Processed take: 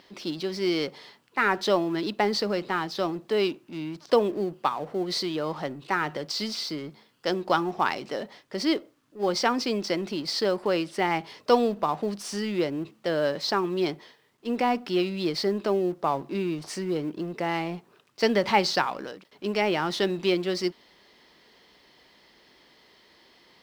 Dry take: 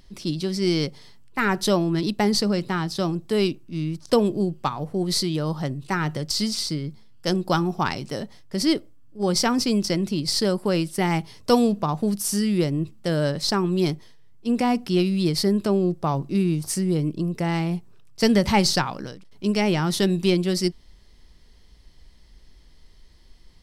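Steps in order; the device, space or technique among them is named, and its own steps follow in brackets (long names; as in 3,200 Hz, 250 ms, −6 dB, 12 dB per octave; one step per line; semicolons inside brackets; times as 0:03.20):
phone line with mismatched companding (band-pass filter 370–3,600 Hz; mu-law and A-law mismatch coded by mu)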